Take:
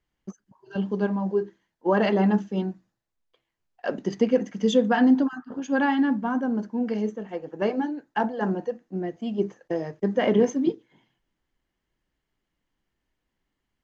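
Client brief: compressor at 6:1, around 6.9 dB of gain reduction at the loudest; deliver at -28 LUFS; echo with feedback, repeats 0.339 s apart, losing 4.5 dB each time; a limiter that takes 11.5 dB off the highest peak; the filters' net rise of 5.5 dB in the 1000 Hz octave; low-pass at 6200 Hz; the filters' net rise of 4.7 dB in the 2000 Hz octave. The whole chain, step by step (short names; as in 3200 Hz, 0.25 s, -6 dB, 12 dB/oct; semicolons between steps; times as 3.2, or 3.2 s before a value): LPF 6200 Hz; bell 1000 Hz +6.5 dB; bell 2000 Hz +3.5 dB; compressor 6:1, threshold -21 dBFS; limiter -22.5 dBFS; feedback echo 0.339 s, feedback 60%, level -4.5 dB; gain +2.5 dB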